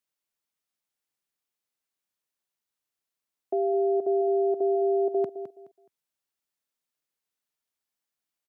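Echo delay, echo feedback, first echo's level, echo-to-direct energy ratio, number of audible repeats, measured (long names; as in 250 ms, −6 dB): 211 ms, 25%, −11.0 dB, −10.5 dB, 2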